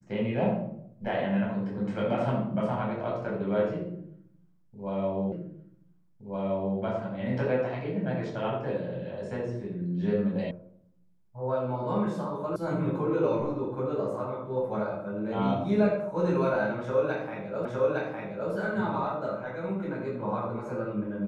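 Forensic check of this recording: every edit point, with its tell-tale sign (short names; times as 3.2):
5.32 repeat of the last 1.47 s
10.51 sound cut off
12.56 sound cut off
17.65 repeat of the last 0.86 s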